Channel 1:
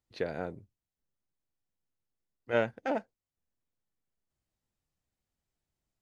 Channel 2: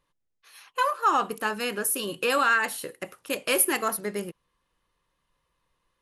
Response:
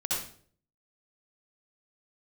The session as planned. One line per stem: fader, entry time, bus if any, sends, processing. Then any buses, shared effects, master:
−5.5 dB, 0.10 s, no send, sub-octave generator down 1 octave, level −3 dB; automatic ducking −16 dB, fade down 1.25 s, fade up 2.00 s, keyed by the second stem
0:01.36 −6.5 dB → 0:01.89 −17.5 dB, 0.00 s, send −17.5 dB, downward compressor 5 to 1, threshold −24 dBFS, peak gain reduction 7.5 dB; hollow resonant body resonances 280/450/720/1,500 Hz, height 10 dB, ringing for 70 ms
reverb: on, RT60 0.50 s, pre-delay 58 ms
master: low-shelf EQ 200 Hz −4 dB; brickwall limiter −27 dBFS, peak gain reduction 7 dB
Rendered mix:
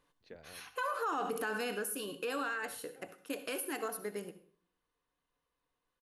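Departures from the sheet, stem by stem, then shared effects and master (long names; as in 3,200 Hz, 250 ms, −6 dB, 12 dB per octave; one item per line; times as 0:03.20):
stem 1 −5.5 dB → −13.5 dB
stem 2 −6.5 dB → −0.5 dB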